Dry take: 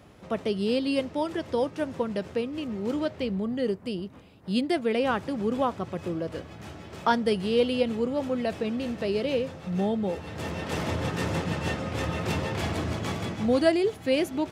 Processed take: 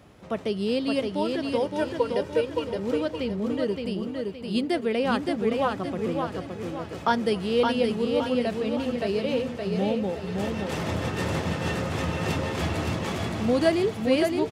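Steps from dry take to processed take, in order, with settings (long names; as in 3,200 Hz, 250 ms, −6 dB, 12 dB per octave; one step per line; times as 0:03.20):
0:01.65–0:02.76: comb filter 2.1 ms, depth 76%
on a send: repeating echo 568 ms, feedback 40%, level −4 dB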